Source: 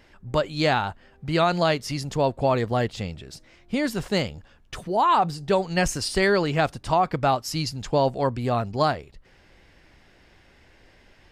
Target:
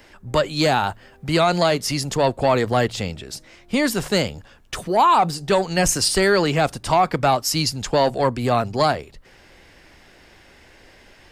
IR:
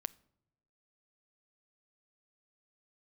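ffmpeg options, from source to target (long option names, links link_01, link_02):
-filter_complex "[0:a]asettb=1/sr,asplit=3[link_01][link_02][link_03];[link_01]atrim=end=0.624[link_04];[link_02]atrim=start=0.62:end=1.39,asetpts=PTS-STARTPTS,afade=type=in:duration=0.004:curve=qsin,afade=type=out:start_time=0.766:duration=0.004:curve=qsin,highshelf=frequency=9000:gain=5[link_05];[link_03]atrim=start=1.386[link_06];[link_04][link_05]acrossfade=duration=0.004:curve1=hsin:curve2=qsin[link_07];[link_07][link_06]acrossfade=duration=0.004:curve1=qsin:curve2=hsin,acrossover=split=240|950|6300[link_08][link_09][link_10][link_11];[link_08]flanger=delay=8.2:depth=5.5:regen=-85:speed=0.53:shape=triangular[link_12];[link_09]asoftclip=type=tanh:threshold=-22dB[link_13];[link_10]alimiter=limit=-20.5dB:level=0:latency=1:release=104[link_14];[link_11]acontrast=28[link_15];[link_12][link_13][link_14][link_15]amix=inputs=4:normalize=0,volume=7dB"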